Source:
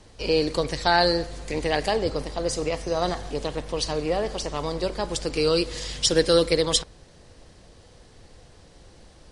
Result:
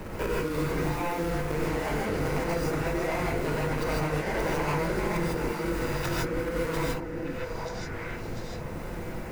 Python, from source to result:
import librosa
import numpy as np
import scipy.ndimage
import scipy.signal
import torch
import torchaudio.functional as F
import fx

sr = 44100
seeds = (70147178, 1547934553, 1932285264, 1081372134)

y = scipy.ndimage.median_filter(x, 41, mode='constant')
y = fx.band_shelf(y, sr, hz=1500.0, db=8.5, octaves=1.7)
y = fx.hum_notches(y, sr, base_hz=60, count=5)
y = fx.over_compress(y, sr, threshold_db=-32.0, ratio=-1.0)
y = fx.high_shelf(y, sr, hz=8200.0, db=11.0)
y = fx.echo_stepped(y, sr, ms=407, hz=270.0, octaves=1.4, feedback_pct=70, wet_db=-5.0)
y = fx.rev_gated(y, sr, seeds[0], gate_ms=180, shape='rising', drr_db=-7.0)
y = fx.band_squash(y, sr, depth_pct=70)
y = y * 10.0 ** (-4.5 / 20.0)